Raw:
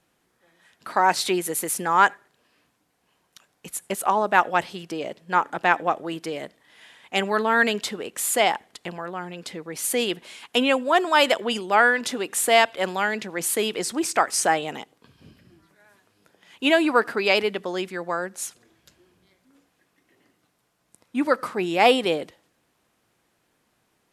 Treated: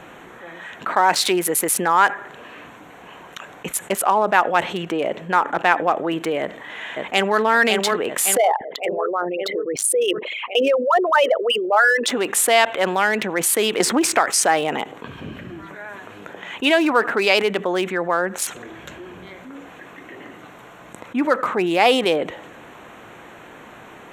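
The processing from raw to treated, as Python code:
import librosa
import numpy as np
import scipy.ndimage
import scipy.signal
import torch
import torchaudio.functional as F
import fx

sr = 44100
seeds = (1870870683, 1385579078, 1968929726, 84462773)

y = fx.echo_throw(x, sr, start_s=6.4, length_s=1.0, ms=560, feedback_pct=65, wet_db=-5.0)
y = fx.envelope_sharpen(y, sr, power=3.0, at=(8.37, 12.08))
y = fx.band_squash(y, sr, depth_pct=100, at=(13.8, 14.3))
y = fx.wiener(y, sr, points=9)
y = fx.low_shelf(y, sr, hz=240.0, db=-9.0)
y = fx.env_flatten(y, sr, amount_pct=50)
y = y * librosa.db_to_amplitude(1.5)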